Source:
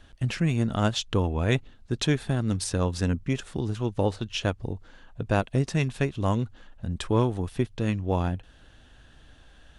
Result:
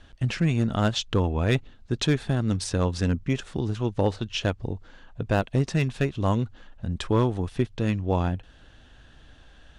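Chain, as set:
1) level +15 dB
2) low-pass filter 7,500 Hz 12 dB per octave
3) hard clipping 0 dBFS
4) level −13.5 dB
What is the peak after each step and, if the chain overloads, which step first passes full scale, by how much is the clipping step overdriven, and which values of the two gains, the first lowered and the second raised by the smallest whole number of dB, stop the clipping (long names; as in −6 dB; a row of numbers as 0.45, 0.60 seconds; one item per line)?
+5.5, +5.5, 0.0, −13.5 dBFS
step 1, 5.5 dB
step 1 +9 dB, step 4 −7.5 dB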